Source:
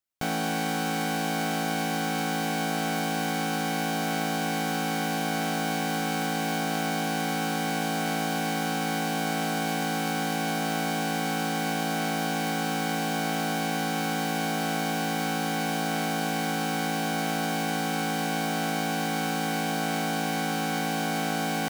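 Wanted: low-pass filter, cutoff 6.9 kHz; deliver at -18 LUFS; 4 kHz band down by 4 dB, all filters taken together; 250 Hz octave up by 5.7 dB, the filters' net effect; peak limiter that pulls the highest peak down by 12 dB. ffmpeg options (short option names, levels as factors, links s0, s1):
-af "lowpass=6900,equalizer=f=250:t=o:g=7,equalizer=f=4000:t=o:g=-5,volume=6.68,alimiter=limit=0.299:level=0:latency=1"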